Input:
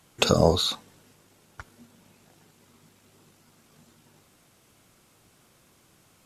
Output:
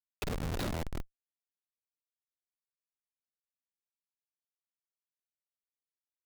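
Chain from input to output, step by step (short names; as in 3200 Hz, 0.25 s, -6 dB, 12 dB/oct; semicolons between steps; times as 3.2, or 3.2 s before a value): frequency-shifting echo 0.321 s, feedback 31%, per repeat +82 Hz, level -4 dB; Schmitt trigger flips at -18.5 dBFS; gain -2.5 dB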